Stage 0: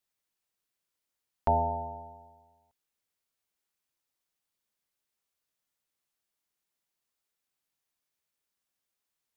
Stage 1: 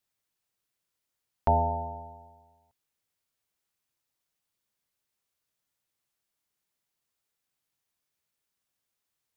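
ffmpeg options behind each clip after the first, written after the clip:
ffmpeg -i in.wav -af "equalizer=frequency=110:width_type=o:width=0.95:gain=5.5,volume=1.5dB" out.wav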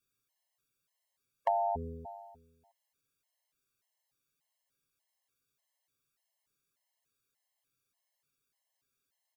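ffmpeg -i in.wav -af "aecho=1:1:7.4:0.45,acompressor=threshold=-27dB:ratio=6,afftfilt=real='re*gt(sin(2*PI*1.7*pts/sr)*(1-2*mod(floor(b*sr/1024/550),2)),0)':imag='im*gt(sin(2*PI*1.7*pts/sr)*(1-2*mod(floor(b*sr/1024/550),2)),0)':win_size=1024:overlap=0.75,volume=2dB" out.wav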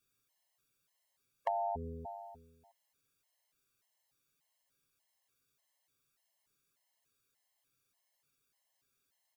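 ffmpeg -i in.wav -af "acompressor=threshold=-48dB:ratio=1.5,volume=3dB" out.wav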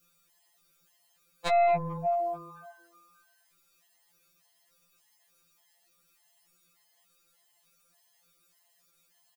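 ffmpeg -i in.wav -filter_complex "[0:a]asplit=6[link_01][link_02][link_03][link_04][link_05][link_06];[link_02]adelay=221,afreqshift=130,volume=-20dB[link_07];[link_03]adelay=442,afreqshift=260,volume=-24.9dB[link_08];[link_04]adelay=663,afreqshift=390,volume=-29.8dB[link_09];[link_05]adelay=884,afreqshift=520,volume=-34.6dB[link_10];[link_06]adelay=1105,afreqshift=650,volume=-39.5dB[link_11];[link_01][link_07][link_08][link_09][link_10][link_11]amix=inputs=6:normalize=0,aeval=exprs='0.112*(cos(1*acos(clip(val(0)/0.112,-1,1)))-cos(1*PI/2))+0.0398*(cos(2*acos(clip(val(0)/0.112,-1,1)))-cos(2*PI/2))+0.0562*(cos(7*acos(clip(val(0)/0.112,-1,1)))-cos(7*PI/2))':channel_layout=same,afftfilt=real='re*2.83*eq(mod(b,8),0)':imag='im*2.83*eq(mod(b,8),0)':win_size=2048:overlap=0.75,volume=6.5dB" out.wav

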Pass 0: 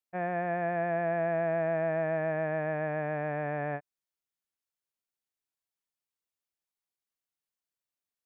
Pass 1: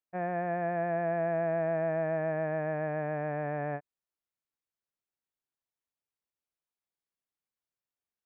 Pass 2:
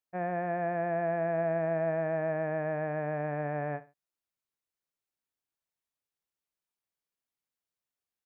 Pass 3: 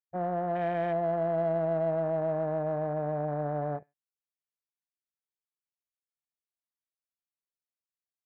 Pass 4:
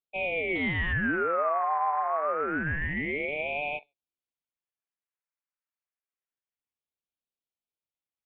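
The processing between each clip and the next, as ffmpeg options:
ffmpeg -i in.wav -af "highshelf=frequency=2500:gain=-9.5" out.wav
ffmpeg -i in.wav -af "aecho=1:1:67|134:0.141|0.0367" out.wav
ffmpeg -i in.wav -filter_complex "[0:a]afwtdn=0.0126,asplit=2[link_01][link_02];[link_02]asoftclip=type=tanh:threshold=-31.5dB,volume=-9dB[link_03];[link_01][link_03]amix=inputs=2:normalize=0" out.wav
ffmpeg -i in.wav -af "highpass=frequency=490:width_type=q:width=0.5412,highpass=frequency=490:width_type=q:width=1.307,lowpass=frequency=2300:width_type=q:width=0.5176,lowpass=frequency=2300:width_type=q:width=0.7071,lowpass=frequency=2300:width_type=q:width=1.932,afreqshift=250,aeval=exprs='val(0)*sin(2*PI*850*n/s+850*0.85/0.27*sin(2*PI*0.27*n/s))':channel_layout=same,volume=5.5dB" out.wav

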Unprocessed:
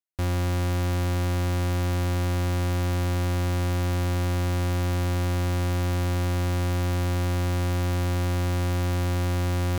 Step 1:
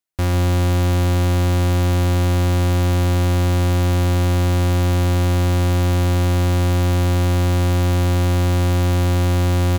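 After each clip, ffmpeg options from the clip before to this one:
ffmpeg -i in.wav -filter_complex "[0:a]asplit=2[link_01][link_02];[link_02]adelay=145.8,volume=-15dB,highshelf=frequency=4000:gain=-3.28[link_03];[link_01][link_03]amix=inputs=2:normalize=0,volume=7dB" out.wav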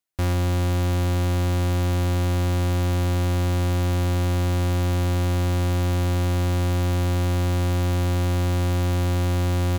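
ffmpeg -i in.wav -af "alimiter=limit=-21dB:level=0:latency=1" out.wav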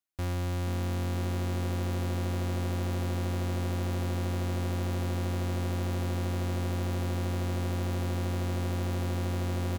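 ffmpeg -i in.wav -filter_complex "[0:a]asoftclip=type=tanh:threshold=-22dB,asplit=2[link_01][link_02];[link_02]asplit=6[link_03][link_04][link_05][link_06][link_07][link_08];[link_03]adelay=476,afreqshift=140,volume=-12dB[link_09];[link_04]adelay=952,afreqshift=280,volume=-17.2dB[link_10];[link_05]adelay=1428,afreqshift=420,volume=-22.4dB[link_11];[link_06]adelay=1904,afreqshift=560,volume=-27.6dB[link_12];[link_07]adelay=2380,afreqshift=700,volume=-32.8dB[link_13];[link_08]adelay=2856,afreqshift=840,volume=-38dB[link_14];[link_09][link_10][link_11][link_12][link_13][link_14]amix=inputs=6:normalize=0[link_15];[link_01][link_15]amix=inputs=2:normalize=0,volume=-6.5dB" out.wav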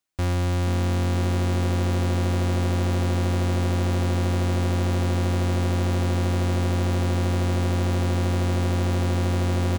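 ffmpeg -i in.wav -af "equalizer=frequency=13000:width=3.2:gain=-14,volume=8dB" out.wav

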